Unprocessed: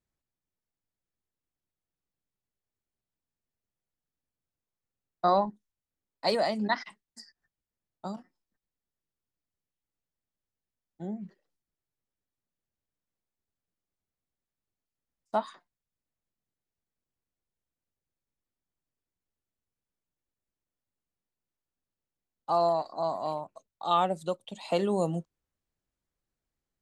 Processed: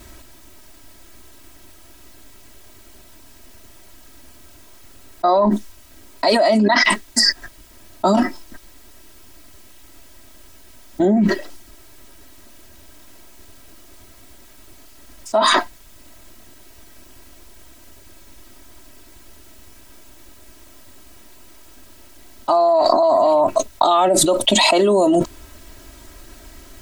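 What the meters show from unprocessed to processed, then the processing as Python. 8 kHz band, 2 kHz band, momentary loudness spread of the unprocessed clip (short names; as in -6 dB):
+30.0 dB, +19.5 dB, 17 LU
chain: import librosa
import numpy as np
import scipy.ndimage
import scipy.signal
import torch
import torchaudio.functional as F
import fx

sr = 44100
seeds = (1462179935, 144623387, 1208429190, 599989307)

y = fx.dynamic_eq(x, sr, hz=590.0, q=2.5, threshold_db=-37.0, ratio=4.0, max_db=3)
y = y + 0.94 * np.pad(y, (int(3.1 * sr / 1000.0), 0))[:len(y)]
y = fx.env_flatten(y, sr, amount_pct=100)
y = y * librosa.db_to_amplitude(2.5)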